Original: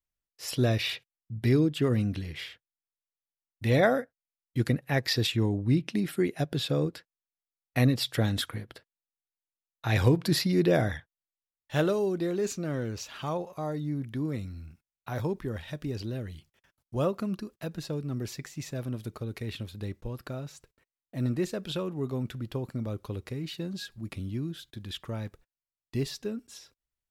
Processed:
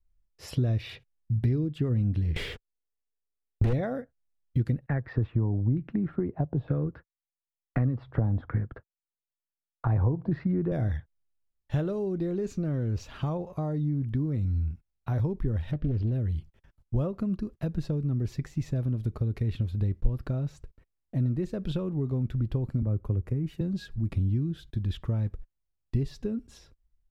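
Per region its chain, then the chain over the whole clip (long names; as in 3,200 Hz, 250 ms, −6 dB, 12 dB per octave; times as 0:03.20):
0:02.36–0:03.73: parametric band 440 Hz +14 dB 0.47 octaves + downward compressor 3 to 1, threshold −26 dBFS + leveller curve on the samples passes 5
0:04.86–0:10.72: downward expander −46 dBFS + auto-filter low-pass saw down 1.1 Hz 760–1,700 Hz + multiband upward and downward compressor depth 40%
0:15.71–0:16.12: high-frequency loss of the air 190 metres + highs frequency-modulated by the lows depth 0.39 ms
0:22.82–0:23.61: parametric band 4,100 Hz −14.5 dB 0.94 octaves + multiband upward and downward expander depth 40%
whole clip: low-shelf EQ 93 Hz +10 dB; downward compressor 4 to 1, threshold −33 dBFS; spectral tilt −3 dB per octave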